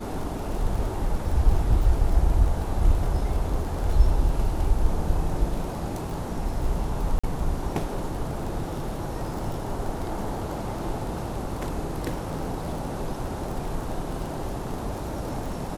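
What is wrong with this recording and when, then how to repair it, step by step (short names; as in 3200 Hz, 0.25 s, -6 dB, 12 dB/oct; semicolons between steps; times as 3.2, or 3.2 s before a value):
crackle 30/s -31 dBFS
7.19–7.24 gap 45 ms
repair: de-click; interpolate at 7.19, 45 ms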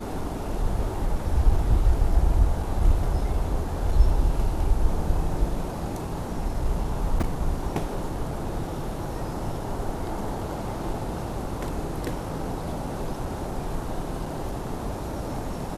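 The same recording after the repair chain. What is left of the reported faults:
none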